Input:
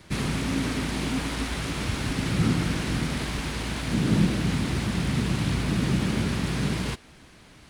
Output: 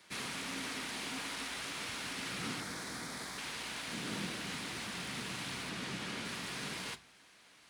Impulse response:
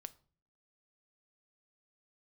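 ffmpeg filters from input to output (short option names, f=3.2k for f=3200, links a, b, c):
-filter_complex "[0:a]asettb=1/sr,asplit=3[a][b][c];[a]atrim=end=2.604[d];[b]atrim=start=2.6:end=3.38,asetpts=PTS-STARTPTS,afade=t=in:d=0.004:c=qsin,afade=t=out:st=0.776:d=0.004:c=qsin,equalizer=f=2.8k:w=3:g=-13[e];[c]atrim=start=3.376[f];[d][e]acrossfade=d=0.004:c1=hsin:c2=qsin[g];[g][f]acrossfade=d=0.004:c1=qsin:c2=hsin,highpass=f=1.1k:p=1,asettb=1/sr,asplit=3[h][i][j];[h]atrim=end=5.694[k];[i]atrim=start=5.69:end=6.25,asetpts=PTS-STARTPTS,afade=t=in:d=0.004:c=qsin,afade=t=out:st=0.556:d=0.004:c=qsin,highshelf=f=10k:g=-8[l];[j]atrim=start=6.246[m];[k][l]acrossfade=d=0.004:c1=hsin:c2=qsin[n];[n][m]acrossfade=d=0.004:c1=qsin:c2=hsin[o];[1:a]atrim=start_sample=2205,asetrate=52920,aresample=44100[p];[o][p]afir=irnorm=-1:irlink=0,volume=1.5dB"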